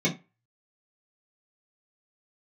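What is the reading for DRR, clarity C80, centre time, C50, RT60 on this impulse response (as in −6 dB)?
−7.5 dB, 22.0 dB, 15 ms, 15.0 dB, 0.25 s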